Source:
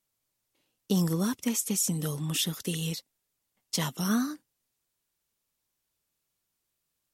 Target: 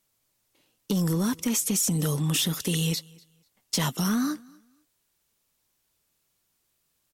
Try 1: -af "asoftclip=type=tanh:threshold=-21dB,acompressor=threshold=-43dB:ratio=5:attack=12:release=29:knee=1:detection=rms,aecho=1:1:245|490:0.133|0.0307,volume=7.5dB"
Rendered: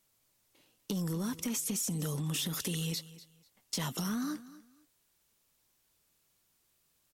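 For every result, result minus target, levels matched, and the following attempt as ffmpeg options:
compressor: peak gain reduction +9 dB; echo-to-direct +8 dB
-af "asoftclip=type=tanh:threshold=-21dB,acompressor=threshold=-31.5dB:ratio=5:attack=12:release=29:knee=1:detection=rms,aecho=1:1:245|490:0.133|0.0307,volume=7.5dB"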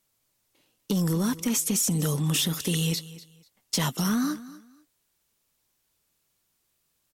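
echo-to-direct +8 dB
-af "asoftclip=type=tanh:threshold=-21dB,acompressor=threshold=-31.5dB:ratio=5:attack=12:release=29:knee=1:detection=rms,aecho=1:1:245|490:0.0531|0.0122,volume=7.5dB"

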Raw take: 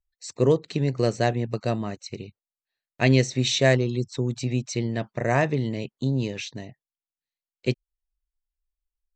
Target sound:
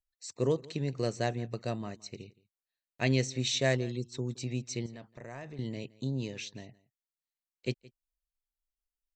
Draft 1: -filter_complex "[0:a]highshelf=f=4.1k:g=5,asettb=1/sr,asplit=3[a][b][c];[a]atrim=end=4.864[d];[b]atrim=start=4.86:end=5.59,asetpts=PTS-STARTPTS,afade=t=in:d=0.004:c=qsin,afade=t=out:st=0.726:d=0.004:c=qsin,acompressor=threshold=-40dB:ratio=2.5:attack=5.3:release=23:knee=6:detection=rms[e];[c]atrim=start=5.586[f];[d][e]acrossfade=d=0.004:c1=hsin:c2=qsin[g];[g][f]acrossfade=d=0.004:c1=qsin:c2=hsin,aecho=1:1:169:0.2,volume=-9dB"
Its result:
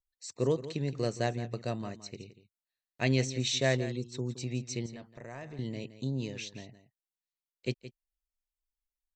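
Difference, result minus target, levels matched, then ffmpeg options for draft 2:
echo-to-direct +8.5 dB
-filter_complex "[0:a]highshelf=f=4.1k:g=5,asettb=1/sr,asplit=3[a][b][c];[a]atrim=end=4.864[d];[b]atrim=start=4.86:end=5.59,asetpts=PTS-STARTPTS,afade=t=in:d=0.004:c=qsin,afade=t=out:st=0.726:d=0.004:c=qsin,acompressor=threshold=-40dB:ratio=2.5:attack=5.3:release=23:knee=6:detection=rms[e];[c]atrim=start=5.586[f];[d][e]acrossfade=d=0.004:c1=hsin:c2=qsin[g];[g][f]acrossfade=d=0.004:c1=qsin:c2=hsin,aecho=1:1:169:0.075,volume=-9dB"

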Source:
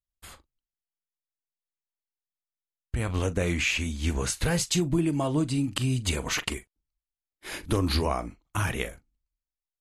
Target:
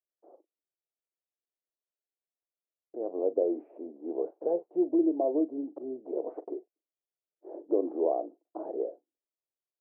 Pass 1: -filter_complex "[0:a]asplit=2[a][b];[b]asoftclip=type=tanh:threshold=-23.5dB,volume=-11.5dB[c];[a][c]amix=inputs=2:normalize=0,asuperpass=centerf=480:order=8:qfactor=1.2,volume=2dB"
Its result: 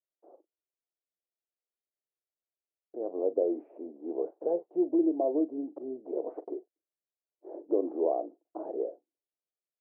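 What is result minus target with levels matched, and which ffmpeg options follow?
soft clip: distortion +12 dB
-filter_complex "[0:a]asplit=2[a][b];[b]asoftclip=type=tanh:threshold=-14.5dB,volume=-11.5dB[c];[a][c]amix=inputs=2:normalize=0,asuperpass=centerf=480:order=8:qfactor=1.2,volume=2dB"

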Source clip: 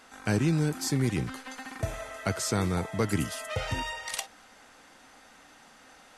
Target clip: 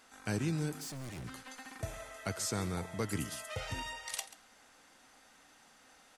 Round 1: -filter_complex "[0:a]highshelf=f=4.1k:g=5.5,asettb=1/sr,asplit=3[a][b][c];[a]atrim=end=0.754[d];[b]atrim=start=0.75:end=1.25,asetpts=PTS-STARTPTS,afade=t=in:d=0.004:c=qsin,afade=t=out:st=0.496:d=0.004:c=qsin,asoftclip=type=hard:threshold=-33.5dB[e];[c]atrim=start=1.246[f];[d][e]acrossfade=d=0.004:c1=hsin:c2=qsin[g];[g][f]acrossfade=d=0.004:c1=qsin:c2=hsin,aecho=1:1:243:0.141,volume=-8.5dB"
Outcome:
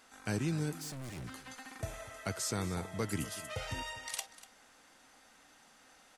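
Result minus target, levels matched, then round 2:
echo 0.107 s late
-filter_complex "[0:a]highshelf=f=4.1k:g=5.5,asettb=1/sr,asplit=3[a][b][c];[a]atrim=end=0.754[d];[b]atrim=start=0.75:end=1.25,asetpts=PTS-STARTPTS,afade=t=in:d=0.004:c=qsin,afade=t=out:st=0.496:d=0.004:c=qsin,asoftclip=type=hard:threshold=-33.5dB[e];[c]atrim=start=1.246[f];[d][e]acrossfade=d=0.004:c1=hsin:c2=qsin[g];[g][f]acrossfade=d=0.004:c1=qsin:c2=hsin,aecho=1:1:136:0.141,volume=-8.5dB"

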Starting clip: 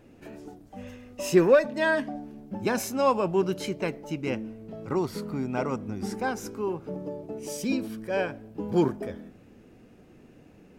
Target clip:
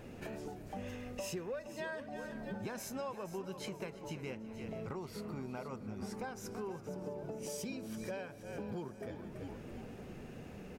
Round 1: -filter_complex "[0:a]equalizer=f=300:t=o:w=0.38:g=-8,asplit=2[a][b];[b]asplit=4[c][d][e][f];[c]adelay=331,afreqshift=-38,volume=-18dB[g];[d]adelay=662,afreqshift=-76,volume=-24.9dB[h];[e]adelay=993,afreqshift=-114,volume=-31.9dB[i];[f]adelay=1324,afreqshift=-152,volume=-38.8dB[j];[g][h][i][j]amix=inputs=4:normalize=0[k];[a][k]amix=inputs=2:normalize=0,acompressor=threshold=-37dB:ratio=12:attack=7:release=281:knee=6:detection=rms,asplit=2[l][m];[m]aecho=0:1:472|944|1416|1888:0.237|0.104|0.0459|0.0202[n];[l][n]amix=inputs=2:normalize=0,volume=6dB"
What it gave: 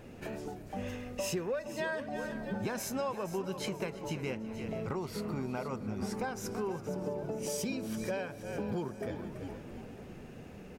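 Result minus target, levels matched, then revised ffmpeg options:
compressor: peak gain reduction -6.5 dB
-filter_complex "[0:a]equalizer=f=300:t=o:w=0.38:g=-8,asplit=2[a][b];[b]asplit=4[c][d][e][f];[c]adelay=331,afreqshift=-38,volume=-18dB[g];[d]adelay=662,afreqshift=-76,volume=-24.9dB[h];[e]adelay=993,afreqshift=-114,volume=-31.9dB[i];[f]adelay=1324,afreqshift=-152,volume=-38.8dB[j];[g][h][i][j]amix=inputs=4:normalize=0[k];[a][k]amix=inputs=2:normalize=0,acompressor=threshold=-44dB:ratio=12:attack=7:release=281:knee=6:detection=rms,asplit=2[l][m];[m]aecho=0:1:472|944|1416|1888:0.237|0.104|0.0459|0.0202[n];[l][n]amix=inputs=2:normalize=0,volume=6dB"

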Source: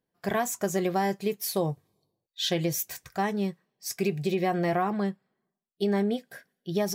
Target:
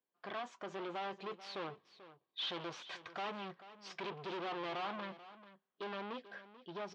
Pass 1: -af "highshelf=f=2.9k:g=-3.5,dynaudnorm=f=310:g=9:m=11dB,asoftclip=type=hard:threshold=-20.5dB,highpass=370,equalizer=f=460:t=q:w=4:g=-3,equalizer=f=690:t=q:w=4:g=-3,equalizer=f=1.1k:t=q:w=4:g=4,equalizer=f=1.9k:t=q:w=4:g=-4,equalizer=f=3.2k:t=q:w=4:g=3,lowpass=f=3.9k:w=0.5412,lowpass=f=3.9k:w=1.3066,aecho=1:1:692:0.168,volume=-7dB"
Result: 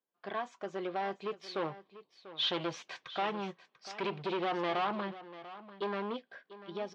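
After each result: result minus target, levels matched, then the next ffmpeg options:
echo 0.254 s late; hard clip: distortion -4 dB
-af "highshelf=f=2.9k:g=-3.5,dynaudnorm=f=310:g=9:m=11dB,asoftclip=type=hard:threshold=-20.5dB,highpass=370,equalizer=f=460:t=q:w=4:g=-3,equalizer=f=690:t=q:w=4:g=-3,equalizer=f=1.1k:t=q:w=4:g=4,equalizer=f=1.9k:t=q:w=4:g=-4,equalizer=f=3.2k:t=q:w=4:g=3,lowpass=f=3.9k:w=0.5412,lowpass=f=3.9k:w=1.3066,aecho=1:1:438:0.168,volume=-7dB"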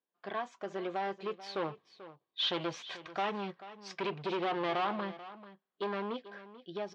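hard clip: distortion -4 dB
-af "highshelf=f=2.9k:g=-3.5,dynaudnorm=f=310:g=9:m=11dB,asoftclip=type=hard:threshold=-30dB,highpass=370,equalizer=f=460:t=q:w=4:g=-3,equalizer=f=690:t=q:w=4:g=-3,equalizer=f=1.1k:t=q:w=4:g=4,equalizer=f=1.9k:t=q:w=4:g=-4,equalizer=f=3.2k:t=q:w=4:g=3,lowpass=f=3.9k:w=0.5412,lowpass=f=3.9k:w=1.3066,aecho=1:1:438:0.168,volume=-7dB"

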